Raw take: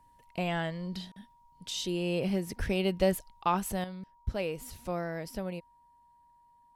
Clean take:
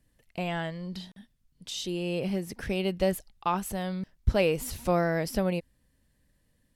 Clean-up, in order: band-stop 950 Hz, Q 30; de-plosive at 2.58 s; gain correction +9 dB, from 3.84 s

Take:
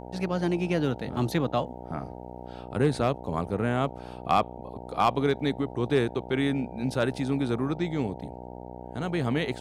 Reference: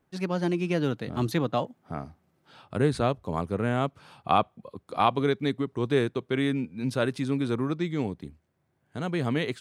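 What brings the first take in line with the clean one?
clip repair -13 dBFS; de-hum 61.4 Hz, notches 15

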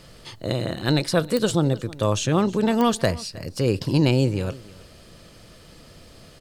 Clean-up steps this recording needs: de-click; inverse comb 316 ms -20.5 dB

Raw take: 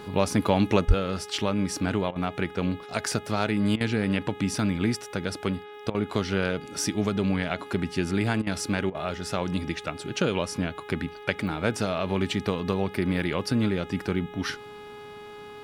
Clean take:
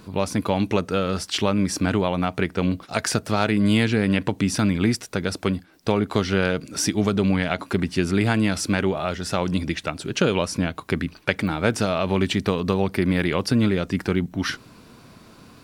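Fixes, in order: de-hum 417.2 Hz, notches 9; de-plosive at 0.87 s; interpolate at 2.11/3.76/5.90/8.42/8.90 s, 45 ms; trim 0 dB, from 0.85 s +5 dB

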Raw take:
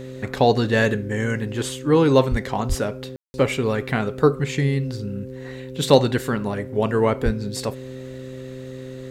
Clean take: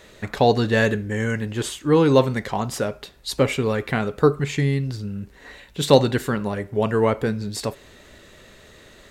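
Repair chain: de-hum 129.8 Hz, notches 4; de-plosive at 2.30/2.68/7.24 s; room tone fill 3.16–3.34 s

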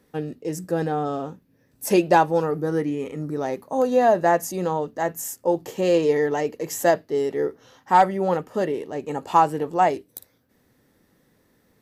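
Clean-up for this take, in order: clip repair -6.5 dBFS

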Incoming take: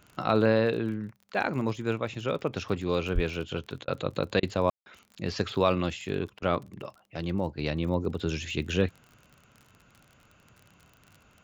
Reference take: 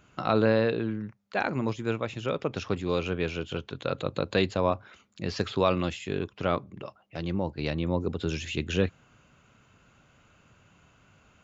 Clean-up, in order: de-click; 3.14–3.26 s: high-pass 140 Hz 24 dB/octave; room tone fill 4.70–4.86 s; interpolate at 3.85/4.40/6.39 s, 28 ms

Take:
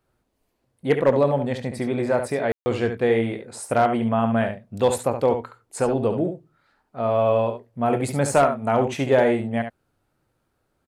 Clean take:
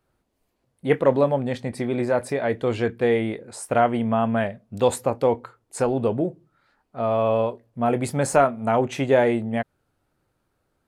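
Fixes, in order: clip repair -9 dBFS; room tone fill 2.52–2.66 s; inverse comb 70 ms -8 dB

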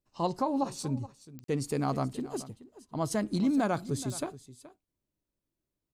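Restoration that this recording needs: de-click; interpolate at 1.44 s, 43 ms; inverse comb 425 ms -17 dB

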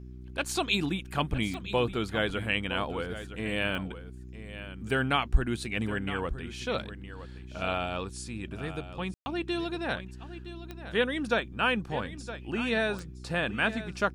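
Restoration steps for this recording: de-click; de-hum 62.5 Hz, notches 6; room tone fill 9.14–9.26 s; inverse comb 965 ms -13 dB

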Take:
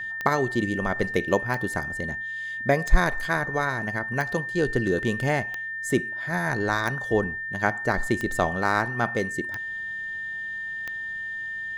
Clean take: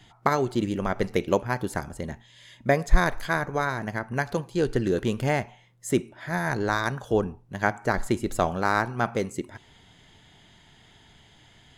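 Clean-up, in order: de-click; band-stop 1.8 kHz, Q 30

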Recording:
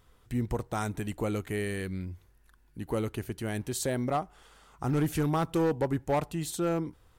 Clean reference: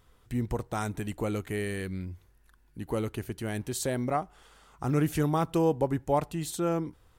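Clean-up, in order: clip repair -21.5 dBFS

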